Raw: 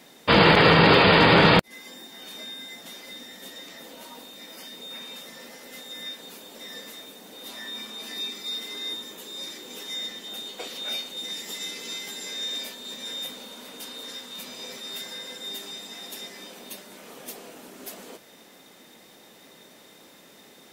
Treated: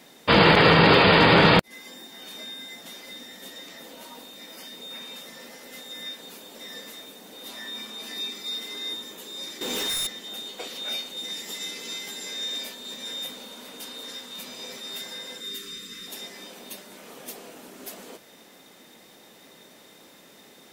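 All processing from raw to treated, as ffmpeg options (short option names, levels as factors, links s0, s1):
-filter_complex "[0:a]asettb=1/sr,asplit=3[s0][s1][s2];[s0]atrim=end=9.614[s3];[s1]atrim=start=9.61:end=10.07,asetpts=PTS-STARTPTS,afade=t=in:d=0.004:c=qsin,afade=t=out:st=0.456:d=0.004:c=qsin,highshelf=f=5700:g=-2.5,aeval=exprs='0.0596*sin(PI/2*3.16*val(0)/0.0596)':c=same[s4];[s2]atrim=start=10.066[s5];[s3][s4]acrossfade=d=0.004:c1=hsin:c2=qsin[s6];[s6][s5]acrossfade=d=0.004:c1=qsin:c2=hsin,asettb=1/sr,asplit=3[s7][s8][s9];[s7]atrim=end=15.404[s10];[s8]atrim=start=15.4:end=16.08,asetpts=PTS-STARTPTS,afade=t=in:d=0.004:c=qsin,afade=t=out:st=0.676:d=0.004:c=qsin,asubboost=boost=11.5:cutoff=180,asuperstop=centerf=740:order=8:qfactor=1.3[s11];[s9]atrim=start=16.076[s12];[s10][s11]acrossfade=d=0.004:c1=hsin:c2=qsin[s13];[s13][s12]acrossfade=d=0.004:c1=qsin:c2=hsin"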